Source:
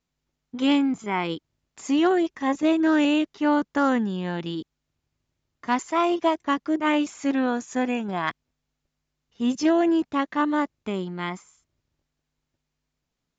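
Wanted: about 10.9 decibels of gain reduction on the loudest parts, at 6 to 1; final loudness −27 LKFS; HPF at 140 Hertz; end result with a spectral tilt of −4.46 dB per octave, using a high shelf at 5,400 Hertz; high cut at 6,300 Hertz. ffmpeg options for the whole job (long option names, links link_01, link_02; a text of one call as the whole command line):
ffmpeg -i in.wav -af "highpass=140,lowpass=6300,highshelf=frequency=5400:gain=-4.5,acompressor=threshold=-29dB:ratio=6,volume=6.5dB" out.wav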